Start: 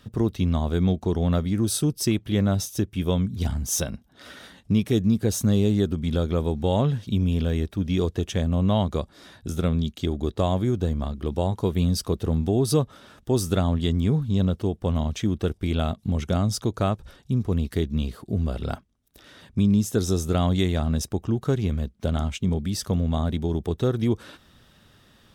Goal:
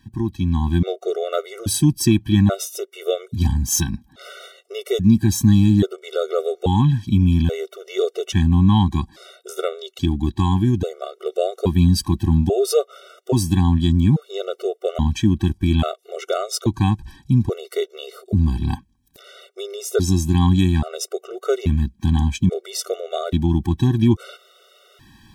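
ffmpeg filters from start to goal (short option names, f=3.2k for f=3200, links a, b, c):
-af "dynaudnorm=f=390:g=3:m=9dB,afftfilt=real='re*gt(sin(2*PI*0.6*pts/sr)*(1-2*mod(floor(b*sr/1024/380),2)),0)':imag='im*gt(sin(2*PI*0.6*pts/sr)*(1-2*mod(floor(b*sr/1024/380),2)),0)':win_size=1024:overlap=0.75"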